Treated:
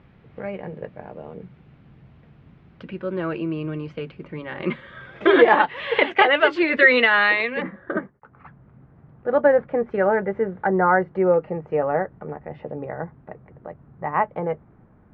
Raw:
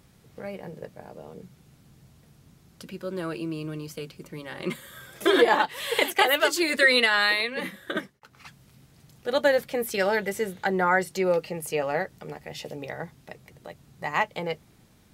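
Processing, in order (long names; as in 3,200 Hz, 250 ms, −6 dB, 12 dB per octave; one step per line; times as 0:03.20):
low-pass filter 2,700 Hz 24 dB per octave, from 0:07.62 1,500 Hz
level +5.5 dB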